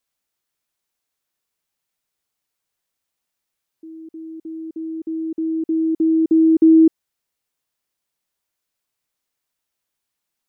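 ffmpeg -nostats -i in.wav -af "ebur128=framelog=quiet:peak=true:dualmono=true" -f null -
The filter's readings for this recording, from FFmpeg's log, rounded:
Integrated loudness:
  I:         -13.7 LUFS
  Threshold: -25.7 LUFS
Loudness range:
  LRA:        18.4 LU
  Threshold: -38.2 LUFS
  LRA low:   -33.6 LUFS
  LRA high:  -15.2 LUFS
True peak:
  Peak:       -6.7 dBFS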